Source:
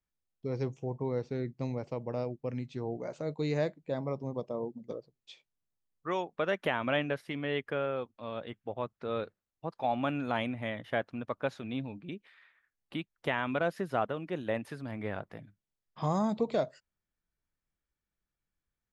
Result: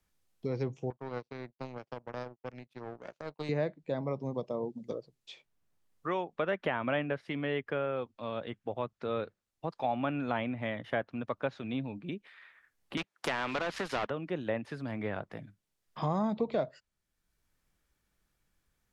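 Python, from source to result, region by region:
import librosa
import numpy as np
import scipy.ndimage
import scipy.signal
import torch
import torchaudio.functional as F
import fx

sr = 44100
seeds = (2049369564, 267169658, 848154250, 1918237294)

y = fx.chain(x, sr, fx.lowpass(hz=5400.0, slope=12),
    fx.low_shelf(hz=450.0, db=-6.0),
    fx.power_curve(exponent=2.0), at=(0.9, 3.49))
y = fx.chain(y, sr, fx.bessel_highpass(hz=330.0, order=2),
    fx.leveller(passes=2),
    fx.spectral_comp(ratio=2.0), at=(12.97, 14.1))
y = fx.env_lowpass_down(y, sr, base_hz=2800.0, full_db=-27.5)
y = fx.band_squash(y, sr, depth_pct=40)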